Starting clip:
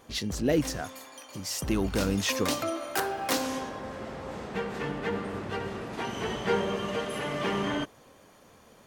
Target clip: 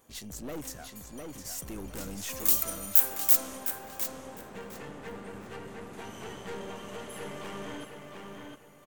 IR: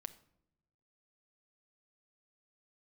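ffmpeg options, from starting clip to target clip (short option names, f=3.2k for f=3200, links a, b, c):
-filter_complex "[0:a]aeval=exprs='(tanh(22.4*val(0)+0.5)-tanh(0.5))/22.4':c=same,asplit=3[a][b][c];[a]afade=t=out:st=2.39:d=0.02[d];[b]aemphasis=mode=production:type=riaa,afade=t=in:st=2.39:d=0.02,afade=t=out:st=3.35:d=0.02[e];[c]afade=t=in:st=3.35:d=0.02[f];[d][e][f]amix=inputs=3:normalize=0,aexciter=amount=2.1:drive=8.2:freq=6.7k,asplit=2[g][h];[h]adelay=707,lowpass=f=4.9k:p=1,volume=-4dB,asplit=2[i][j];[j]adelay=707,lowpass=f=4.9k:p=1,volume=0.31,asplit=2[k][l];[l]adelay=707,lowpass=f=4.9k:p=1,volume=0.31,asplit=2[m][n];[n]adelay=707,lowpass=f=4.9k:p=1,volume=0.31[o];[i][k][m][o]amix=inputs=4:normalize=0[p];[g][p]amix=inputs=2:normalize=0,volume=-8dB"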